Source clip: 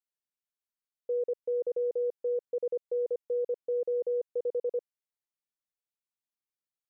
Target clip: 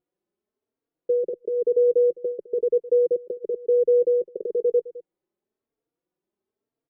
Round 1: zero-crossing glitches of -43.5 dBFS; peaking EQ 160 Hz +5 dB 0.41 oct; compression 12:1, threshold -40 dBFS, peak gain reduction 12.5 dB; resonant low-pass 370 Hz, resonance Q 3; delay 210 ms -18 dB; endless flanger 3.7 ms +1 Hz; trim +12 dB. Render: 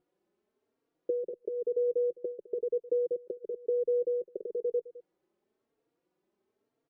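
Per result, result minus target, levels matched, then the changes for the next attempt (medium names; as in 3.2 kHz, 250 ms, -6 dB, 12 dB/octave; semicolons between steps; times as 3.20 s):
compression: peak gain reduction +10 dB; zero-crossing glitches: distortion +7 dB
change: compression 12:1, threshold -28.5 dBFS, peak gain reduction 2 dB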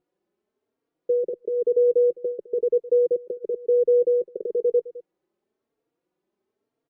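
zero-crossing glitches: distortion +7 dB
change: zero-crossing glitches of -51 dBFS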